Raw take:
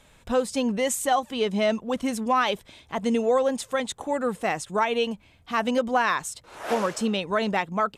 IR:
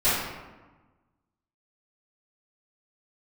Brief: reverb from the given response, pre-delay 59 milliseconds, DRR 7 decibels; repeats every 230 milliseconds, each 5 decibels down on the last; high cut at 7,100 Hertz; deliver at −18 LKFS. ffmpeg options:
-filter_complex "[0:a]lowpass=7100,aecho=1:1:230|460|690|920|1150|1380|1610:0.562|0.315|0.176|0.0988|0.0553|0.031|0.0173,asplit=2[link_01][link_02];[1:a]atrim=start_sample=2205,adelay=59[link_03];[link_02][link_03]afir=irnorm=-1:irlink=0,volume=-23dB[link_04];[link_01][link_04]amix=inputs=2:normalize=0,volume=5.5dB"

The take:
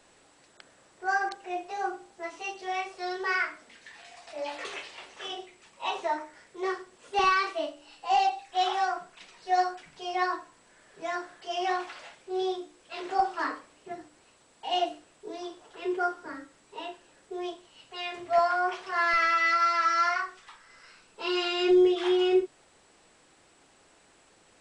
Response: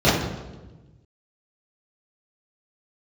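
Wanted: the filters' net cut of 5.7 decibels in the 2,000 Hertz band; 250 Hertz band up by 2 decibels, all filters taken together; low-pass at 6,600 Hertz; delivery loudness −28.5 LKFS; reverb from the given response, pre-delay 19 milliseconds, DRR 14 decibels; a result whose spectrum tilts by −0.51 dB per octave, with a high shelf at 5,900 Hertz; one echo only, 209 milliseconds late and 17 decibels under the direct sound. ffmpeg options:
-filter_complex "[0:a]lowpass=6600,equalizer=frequency=250:width_type=o:gain=4.5,equalizer=frequency=2000:width_type=o:gain=-8.5,highshelf=frequency=5900:gain=8,aecho=1:1:209:0.141,asplit=2[link_01][link_02];[1:a]atrim=start_sample=2205,adelay=19[link_03];[link_02][link_03]afir=irnorm=-1:irlink=0,volume=-36.5dB[link_04];[link_01][link_04]amix=inputs=2:normalize=0,volume=0.5dB"

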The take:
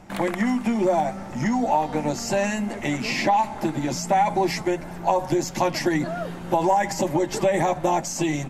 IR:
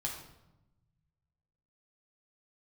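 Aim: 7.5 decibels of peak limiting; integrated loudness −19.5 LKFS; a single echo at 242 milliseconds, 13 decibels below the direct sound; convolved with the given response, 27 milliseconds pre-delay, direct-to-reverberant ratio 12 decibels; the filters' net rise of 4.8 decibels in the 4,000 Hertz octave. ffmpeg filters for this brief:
-filter_complex "[0:a]equalizer=frequency=4000:width_type=o:gain=6.5,alimiter=limit=-15dB:level=0:latency=1,aecho=1:1:242:0.224,asplit=2[link_01][link_02];[1:a]atrim=start_sample=2205,adelay=27[link_03];[link_02][link_03]afir=irnorm=-1:irlink=0,volume=-13.5dB[link_04];[link_01][link_04]amix=inputs=2:normalize=0,volume=5dB"

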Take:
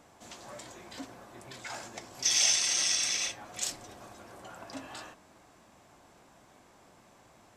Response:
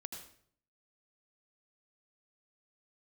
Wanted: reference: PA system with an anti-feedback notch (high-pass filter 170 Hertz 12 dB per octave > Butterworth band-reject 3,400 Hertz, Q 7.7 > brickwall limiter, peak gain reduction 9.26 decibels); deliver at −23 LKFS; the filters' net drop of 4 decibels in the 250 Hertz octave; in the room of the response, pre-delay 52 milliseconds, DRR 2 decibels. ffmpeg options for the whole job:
-filter_complex "[0:a]equalizer=frequency=250:width_type=o:gain=-4,asplit=2[link_01][link_02];[1:a]atrim=start_sample=2205,adelay=52[link_03];[link_02][link_03]afir=irnorm=-1:irlink=0,volume=1dB[link_04];[link_01][link_04]amix=inputs=2:normalize=0,highpass=170,asuperstop=centerf=3400:order=8:qfactor=7.7,volume=9dB,alimiter=limit=-11.5dB:level=0:latency=1"

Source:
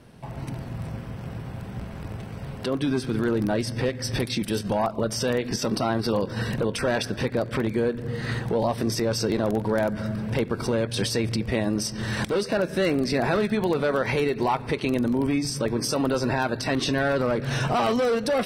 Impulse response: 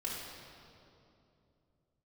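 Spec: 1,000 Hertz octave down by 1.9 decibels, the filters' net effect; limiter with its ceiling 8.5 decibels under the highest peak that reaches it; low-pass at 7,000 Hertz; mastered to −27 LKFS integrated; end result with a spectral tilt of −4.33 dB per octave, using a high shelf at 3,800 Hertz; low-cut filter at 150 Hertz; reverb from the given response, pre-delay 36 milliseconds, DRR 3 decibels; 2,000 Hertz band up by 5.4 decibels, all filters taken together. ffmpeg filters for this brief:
-filter_complex "[0:a]highpass=150,lowpass=7000,equalizer=frequency=1000:width_type=o:gain=-5,equalizer=frequency=2000:width_type=o:gain=7.5,highshelf=frequency=3800:gain=4.5,alimiter=limit=-18dB:level=0:latency=1,asplit=2[link_01][link_02];[1:a]atrim=start_sample=2205,adelay=36[link_03];[link_02][link_03]afir=irnorm=-1:irlink=0,volume=-5.5dB[link_04];[link_01][link_04]amix=inputs=2:normalize=0,volume=-1dB"

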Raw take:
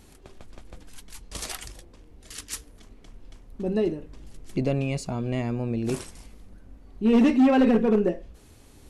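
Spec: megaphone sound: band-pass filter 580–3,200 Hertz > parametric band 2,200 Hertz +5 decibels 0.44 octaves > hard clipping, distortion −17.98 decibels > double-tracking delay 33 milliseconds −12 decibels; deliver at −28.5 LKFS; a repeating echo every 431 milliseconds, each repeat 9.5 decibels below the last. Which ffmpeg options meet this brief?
ffmpeg -i in.wav -filter_complex "[0:a]highpass=580,lowpass=3200,equalizer=frequency=2200:width_type=o:width=0.44:gain=5,aecho=1:1:431|862|1293|1724:0.335|0.111|0.0365|0.012,asoftclip=type=hard:threshold=-22dB,asplit=2[link_01][link_02];[link_02]adelay=33,volume=-12dB[link_03];[link_01][link_03]amix=inputs=2:normalize=0,volume=5.5dB" out.wav

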